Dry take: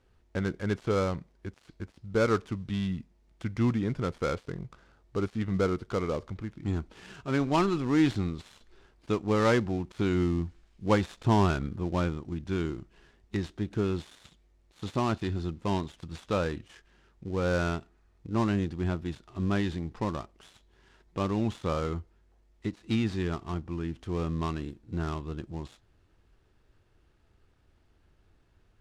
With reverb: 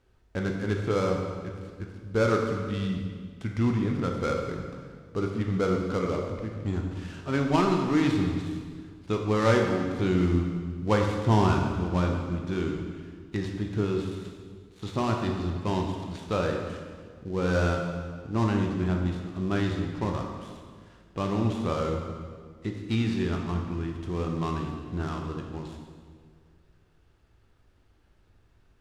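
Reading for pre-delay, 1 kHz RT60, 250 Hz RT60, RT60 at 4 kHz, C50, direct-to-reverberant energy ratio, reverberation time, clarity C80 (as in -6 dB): 15 ms, 1.7 s, 2.0 s, 1.5 s, 3.5 dB, 1.5 dB, 1.8 s, 5.0 dB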